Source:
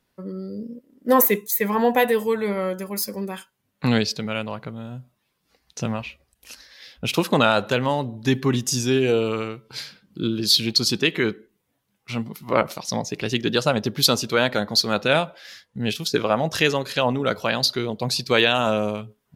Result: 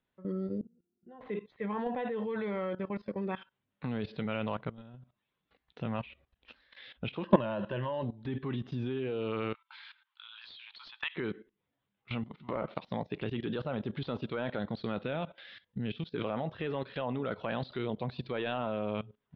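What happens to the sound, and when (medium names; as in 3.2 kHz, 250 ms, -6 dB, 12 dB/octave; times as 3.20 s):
0.61–1.21 s: pitch-class resonator F, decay 0.16 s
7.24–8.03 s: rippled EQ curve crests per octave 1.3, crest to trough 13 dB
9.54–11.16 s: brick-wall FIR band-pass 820–14000 Hz
14.59–16.37 s: peaking EQ 1 kHz -5 dB 2.4 oct
whole clip: de-esser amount 100%; elliptic low-pass 3.6 kHz, stop band 60 dB; level held to a coarse grid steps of 17 dB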